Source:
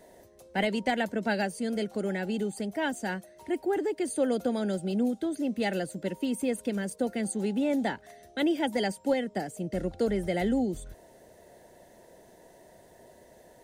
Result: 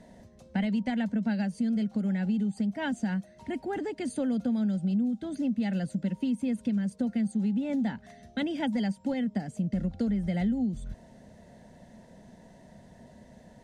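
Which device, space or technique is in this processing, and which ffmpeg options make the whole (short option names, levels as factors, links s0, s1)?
jukebox: -af "lowpass=6600,lowshelf=f=280:t=q:w=3:g=7.5,acompressor=threshold=0.0447:ratio=4"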